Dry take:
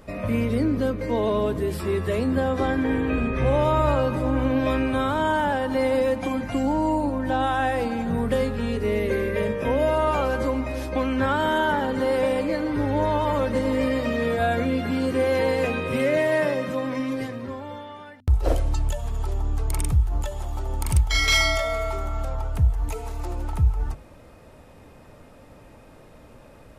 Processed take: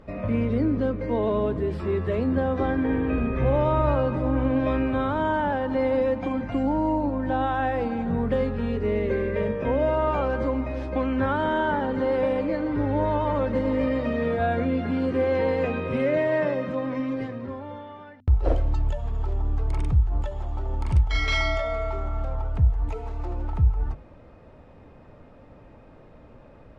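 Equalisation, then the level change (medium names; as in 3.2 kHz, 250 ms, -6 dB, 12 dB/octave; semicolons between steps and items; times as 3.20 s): tape spacing loss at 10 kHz 22 dB; treble shelf 8.9 kHz -8.5 dB; 0.0 dB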